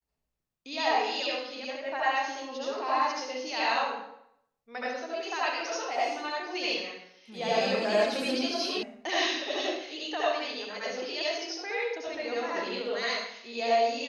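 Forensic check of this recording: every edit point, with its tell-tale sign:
8.83 sound cut off

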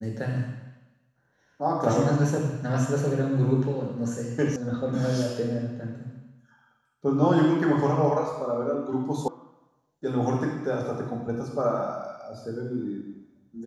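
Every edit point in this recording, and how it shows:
4.56 sound cut off
9.28 sound cut off

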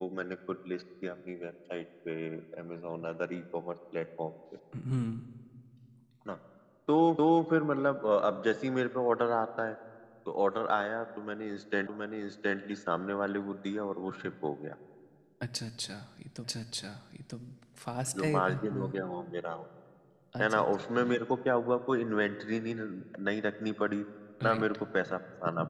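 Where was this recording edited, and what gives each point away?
7.19 repeat of the last 0.29 s
11.87 repeat of the last 0.72 s
16.44 repeat of the last 0.94 s

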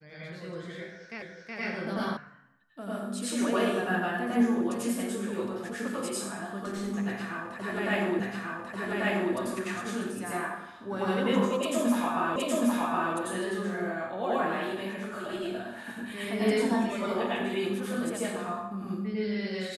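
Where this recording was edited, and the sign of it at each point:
1.22 repeat of the last 0.37 s
2.17 sound cut off
8.2 repeat of the last 1.14 s
12.36 repeat of the last 0.77 s

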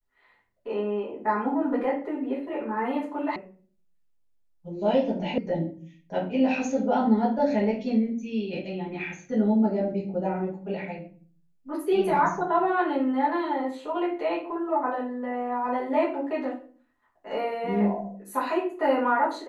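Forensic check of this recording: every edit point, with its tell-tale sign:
3.36 sound cut off
5.38 sound cut off

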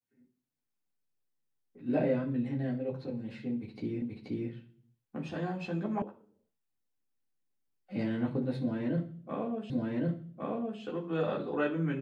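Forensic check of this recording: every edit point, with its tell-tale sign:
4.02 repeat of the last 0.48 s
6.02 sound cut off
9.7 repeat of the last 1.11 s

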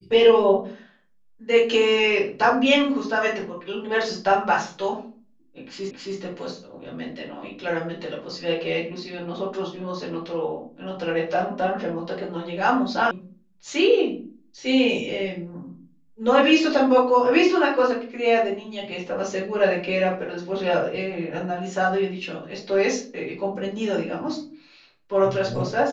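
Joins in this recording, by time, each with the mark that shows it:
5.91 repeat of the last 0.27 s
13.11 sound cut off

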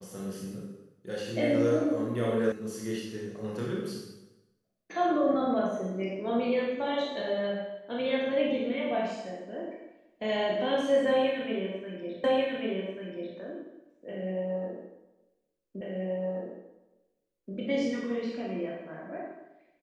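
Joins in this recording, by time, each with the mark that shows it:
2.52 sound cut off
12.24 repeat of the last 1.14 s
15.81 repeat of the last 1.73 s

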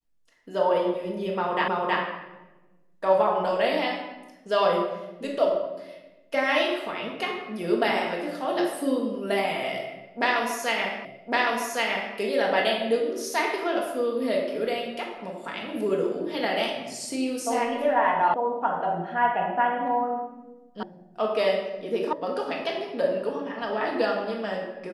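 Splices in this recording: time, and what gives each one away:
1.68 repeat of the last 0.32 s
11.05 repeat of the last 1.11 s
18.34 sound cut off
20.83 sound cut off
22.13 sound cut off

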